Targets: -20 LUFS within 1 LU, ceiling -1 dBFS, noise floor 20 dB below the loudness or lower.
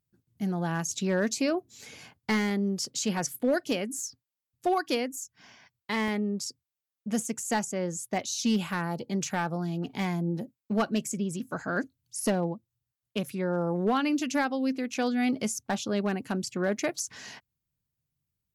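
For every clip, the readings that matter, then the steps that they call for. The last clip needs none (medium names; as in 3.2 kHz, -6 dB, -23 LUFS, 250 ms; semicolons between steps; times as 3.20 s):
clipped samples 0.3%; clipping level -18.5 dBFS; dropouts 3; longest dropout 1.3 ms; loudness -30.0 LUFS; peak level -18.5 dBFS; loudness target -20.0 LUFS
-> clip repair -18.5 dBFS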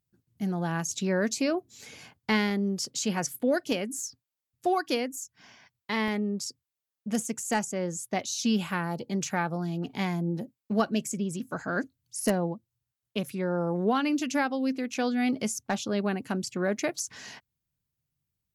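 clipped samples 0.0%; dropouts 3; longest dropout 1.3 ms
-> interpolate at 6.08/8.71/16.99 s, 1.3 ms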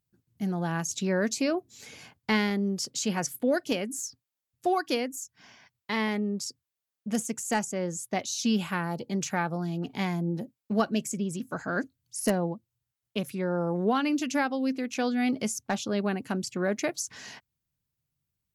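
dropouts 0; loudness -30.0 LUFS; peak level -9.5 dBFS; loudness target -20.0 LUFS
-> trim +10 dB; peak limiter -1 dBFS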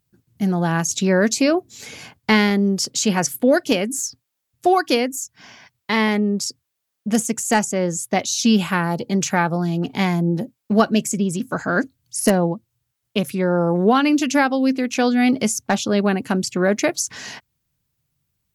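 loudness -20.0 LUFS; peak level -1.0 dBFS; noise floor -78 dBFS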